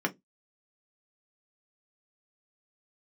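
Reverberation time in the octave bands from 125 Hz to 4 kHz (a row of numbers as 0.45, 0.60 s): 0.25, 0.25, 0.20, 0.10, 0.10, 0.15 s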